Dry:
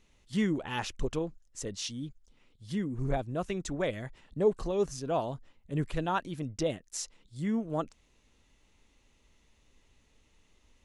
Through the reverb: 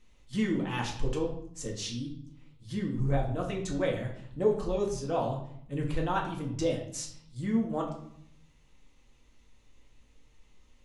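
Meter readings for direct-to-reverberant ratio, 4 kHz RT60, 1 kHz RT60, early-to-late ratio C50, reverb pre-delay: −1.5 dB, 0.55 s, 0.70 s, 7.0 dB, 4 ms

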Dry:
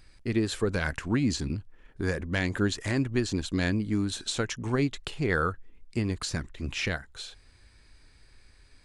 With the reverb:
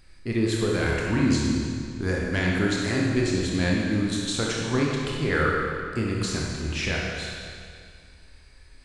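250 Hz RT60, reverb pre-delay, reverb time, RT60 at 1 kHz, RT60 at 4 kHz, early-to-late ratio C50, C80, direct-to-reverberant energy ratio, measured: 2.1 s, 26 ms, 2.2 s, 2.2 s, 2.0 s, −1.0 dB, 1.0 dB, −3.0 dB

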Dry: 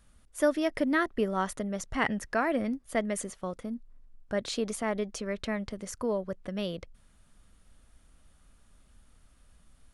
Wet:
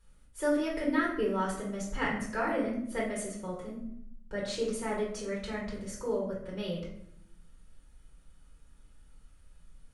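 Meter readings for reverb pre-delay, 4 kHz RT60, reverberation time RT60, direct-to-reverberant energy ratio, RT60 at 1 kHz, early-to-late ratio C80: 4 ms, 0.50 s, 0.75 s, −5.5 dB, 0.65 s, 8.0 dB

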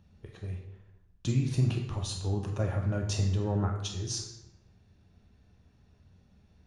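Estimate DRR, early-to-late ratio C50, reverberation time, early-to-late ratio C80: 1.0 dB, 5.5 dB, 0.85 s, 8.5 dB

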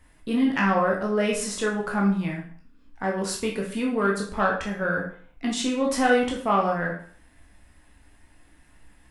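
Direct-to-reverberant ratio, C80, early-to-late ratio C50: −2.0 dB, 10.0 dB, 6.0 dB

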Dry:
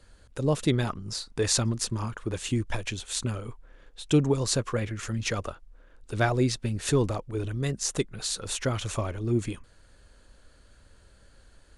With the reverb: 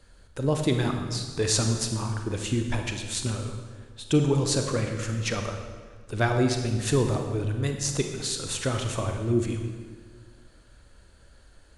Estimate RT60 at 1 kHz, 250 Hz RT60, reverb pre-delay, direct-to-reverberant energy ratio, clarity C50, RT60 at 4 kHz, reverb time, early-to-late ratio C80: 1.5 s, 1.9 s, 30 ms, 4.0 dB, 5.5 dB, 1.3 s, 1.6 s, 7.0 dB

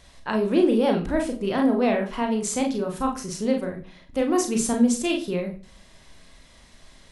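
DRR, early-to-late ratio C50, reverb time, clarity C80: 2.0 dB, 10.5 dB, 0.40 s, 15.0 dB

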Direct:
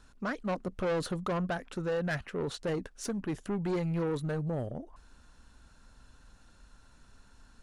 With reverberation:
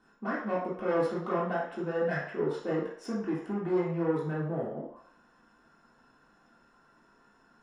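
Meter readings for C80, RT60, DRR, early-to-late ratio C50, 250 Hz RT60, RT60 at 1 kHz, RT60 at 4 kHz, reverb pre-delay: 7.0 dB, 0.60 s, −8.5 dB, 3.0 dB, can't be measured, 0.60 s, 0.60 s, 3 ms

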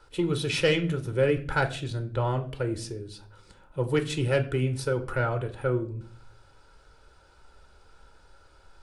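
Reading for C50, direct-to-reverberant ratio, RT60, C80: 14.5 dB, 6.5 dB, non-exponential decay, 18.5 dB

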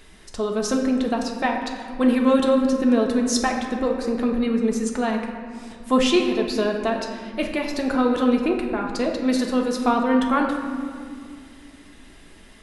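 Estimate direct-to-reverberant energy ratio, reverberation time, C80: 0.0 dB, 2.1 s, 6.0 dB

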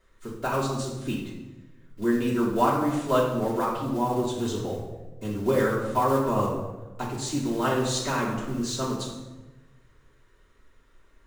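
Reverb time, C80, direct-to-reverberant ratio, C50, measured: 1.1 s, 5.5 dB, −6.5 dB, 3.0 dB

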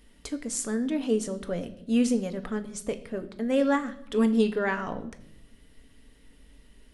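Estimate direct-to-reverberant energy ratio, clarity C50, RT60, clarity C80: 7.5 dB, 15.0 dB, 0.80 s, 17.5 dB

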